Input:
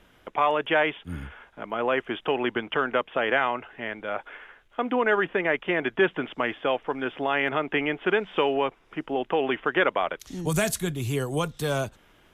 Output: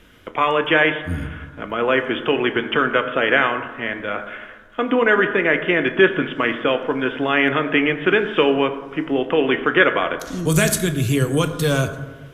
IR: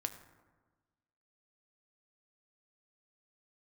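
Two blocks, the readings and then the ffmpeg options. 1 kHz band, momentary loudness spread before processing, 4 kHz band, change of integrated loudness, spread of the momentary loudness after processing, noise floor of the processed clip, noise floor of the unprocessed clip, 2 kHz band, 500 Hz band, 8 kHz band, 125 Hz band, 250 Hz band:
+4.5 dB, 11 LU, +8.5 dB, +7.5 dB, 11 LU, -41 dBFS, -59 dBFS, +8.5 dB, +6.5 dB, no reading, +9.5 dB, +9.0 dB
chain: -filter_complex "[0:a]equalizer=f=790:w=2.1:g=-9.5[s0];[1:a]atrim=start_sample=2205,asetrate=40572,aresample=44100[s1];[s0][s1]afir=irnorm=-1:irlink=0,volume=2.82"

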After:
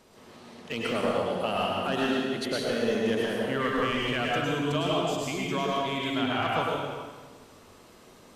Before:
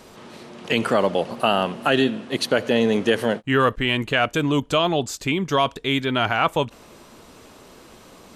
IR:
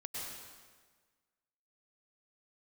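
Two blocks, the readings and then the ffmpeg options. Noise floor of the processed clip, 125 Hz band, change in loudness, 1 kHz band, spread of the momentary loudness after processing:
-53 dBFS, -7.0 dB, -7.0 dB, -6.5 dB, 6 LU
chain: -filter_complex "[0:a]aeval=exprs='clip(val(0),-1,0.237)':c=same[s0];[1:a]atrim=start_sample=2205[s1];[s0][s1]afir=irnorm=-1:irlink=0,volume=0.473"

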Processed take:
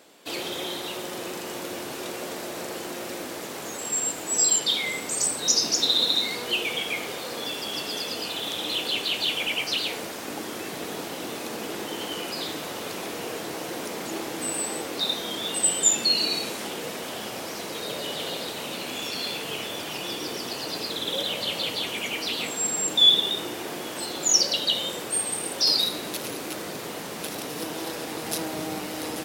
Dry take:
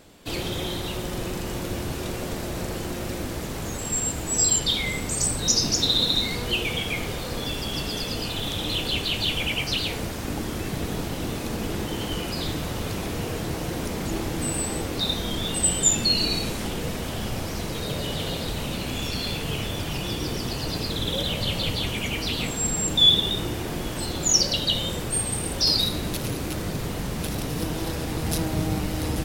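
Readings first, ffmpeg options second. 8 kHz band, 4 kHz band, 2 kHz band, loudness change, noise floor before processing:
0.0 dB, 0.0 dB, 0.0 dB, -1.0 dB, -31 dBFS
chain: -af "highpass=340"

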